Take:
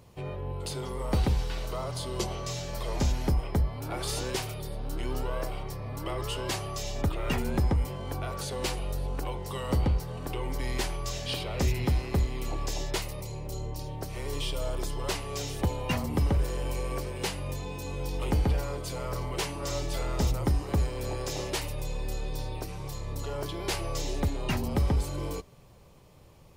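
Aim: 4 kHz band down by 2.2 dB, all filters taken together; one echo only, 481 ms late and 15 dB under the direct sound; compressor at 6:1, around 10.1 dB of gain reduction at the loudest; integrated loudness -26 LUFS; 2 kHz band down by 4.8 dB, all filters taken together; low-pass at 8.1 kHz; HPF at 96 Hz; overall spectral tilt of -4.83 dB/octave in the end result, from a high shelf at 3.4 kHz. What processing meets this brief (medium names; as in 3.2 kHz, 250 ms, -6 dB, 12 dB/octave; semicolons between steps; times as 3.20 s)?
high-pass 96 Hz; low-pass 8.1 kHz; peaking EQ 2 kHz -6.5 dB; treble shelf 3.4 kHz +4 dB; peaking EQ 4 kHz -3.5 dB; compression 6:1, threshold -35 dBFS; delay 481 ms -15 dB; trim +13.5 dB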